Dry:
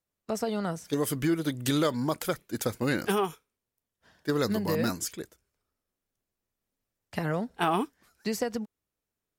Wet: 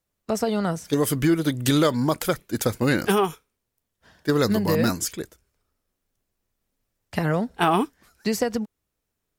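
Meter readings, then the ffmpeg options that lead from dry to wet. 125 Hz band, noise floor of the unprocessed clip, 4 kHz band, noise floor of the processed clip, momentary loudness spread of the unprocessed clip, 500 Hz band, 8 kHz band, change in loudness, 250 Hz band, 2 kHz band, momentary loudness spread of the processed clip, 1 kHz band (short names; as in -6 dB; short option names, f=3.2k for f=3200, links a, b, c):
+7.5 dB, under -85 dBFS, +6.0 dB, -81 dBFS, 11 LU, +6.0 dB, +6.0 dB, +6.5 dB, +6.5 dB, +6.0 dB, 10 LU, +6.0 dB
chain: -af "lowshelf=f=80:g=6.5,volume=6dB"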